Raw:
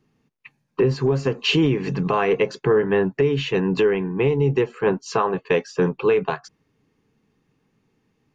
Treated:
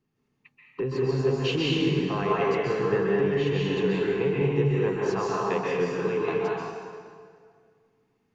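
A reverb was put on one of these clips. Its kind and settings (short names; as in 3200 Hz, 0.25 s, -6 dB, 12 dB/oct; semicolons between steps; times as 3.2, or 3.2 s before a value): plate-style reverb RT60 2 s, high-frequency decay 0.8×, pre-delay 0.12 s, DRR -5.5 dB; gain -11 dB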